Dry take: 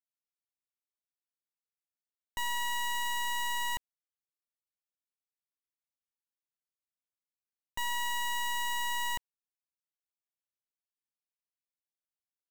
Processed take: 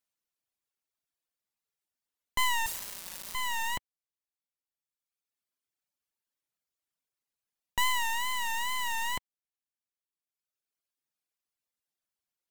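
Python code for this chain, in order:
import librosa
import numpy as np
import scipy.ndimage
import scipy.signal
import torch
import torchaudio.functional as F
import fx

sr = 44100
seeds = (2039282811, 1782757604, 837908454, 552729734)

y = fx.dereverb_blind(x, sr, rt60_s=1.6)
y = fx.wow_flutter(y, sr, seeds[0], rate_hz=2.1, depth_cents=100.0)
y = fx.quant_dither(y, sr, seeds[1], bits=6, dither='none', at=(2.66, 3.35))
y = y * 10.0 ** (7.5 / 20.0)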